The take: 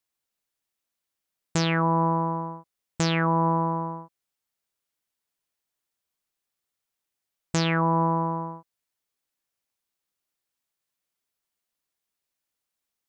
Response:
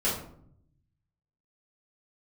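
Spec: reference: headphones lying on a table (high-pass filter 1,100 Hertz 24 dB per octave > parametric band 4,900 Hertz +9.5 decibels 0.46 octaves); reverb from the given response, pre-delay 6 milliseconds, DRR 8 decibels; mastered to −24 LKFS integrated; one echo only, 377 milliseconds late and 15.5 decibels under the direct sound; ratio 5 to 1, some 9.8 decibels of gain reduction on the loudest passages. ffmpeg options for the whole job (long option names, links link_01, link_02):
-filter_complex "[0:a]acompressor=threshold=-30dB:ratio=5,aecho=1:1:377:0.168,asplit=2[link_01][link_02];[1:a]atrim=start_sample=2205,adelay=6[link_03];[link_02][link_03]afir=irnorm=-1:irlink=0,volume=-18dB[link_04];[link_01][link_04]amix=inputs=2:normalize=0,highpass=frequency=1100:width=0.5412,highpass=frequency=1100:width=1.3066,equalizer=frequency=4900:width_type=o:width=0.46:gain=9.5,volume=14.5dB"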